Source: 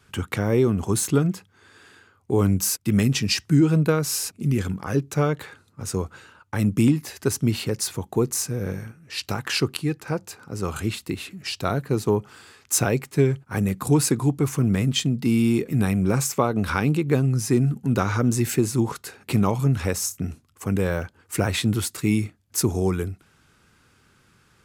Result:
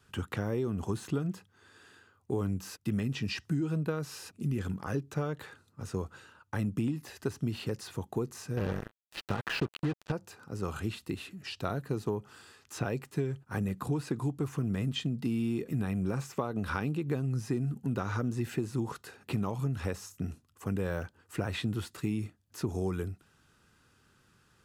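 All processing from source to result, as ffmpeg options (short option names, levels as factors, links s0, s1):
-filter_complex "[0:a]asettb=1/sr,asplit=3[s0][s1][s2];[s0]atrim=end=8.574[s3];[s1]atrim=start=8.57:end=10.12,asetpts=PTS-STARTPTS,afade=t=in:d=0.004:c=qsin,afade=t=out:st=1.546:d=0.004:c=qsin,highshelf=f=4500:g=-11.5,acontrast=32,acrusher=bits=3:mix=0:aa=0.5[s4];[s2]atrim=start=10.116[s5];[s3][s4]acrossfade=d=0.004:c1=hsin:c2=qsin[s6];[s6][s5]acrossfade=d=0.004:c1=qsin:c2=hsin,acrossover=split=3700[s7][s8];[s8]acompressor=threshold=0.00708:ratio=4:attack=1:release=60[s9];[s7][s9]amix=inputs=2:normalize=0,bandreject=f=2200:w=9.5,acompressor=threshold=0.0891:ratio=6,volume=0.473"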